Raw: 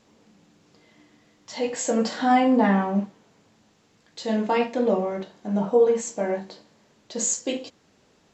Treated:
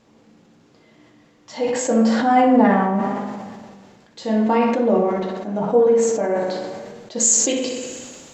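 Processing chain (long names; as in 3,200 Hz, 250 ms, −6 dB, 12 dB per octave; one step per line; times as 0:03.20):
high-shelf EQ 2,400 Hz −5.5 dB, from 0:07.20 +6.5 dB
coupled-rooms reverb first 0.2 s, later 2.8 s, from −20 dB, DRR 12 dB
dynamic equaliser 3,500 Hz, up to −4 dB, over −41 dBFS, Q 0.89
tape delay 61 ms, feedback 67%, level −7.5 dB, low-pass 5,600 Hz
level that may fall only so fast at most 31 dB per second
level +3.5 dB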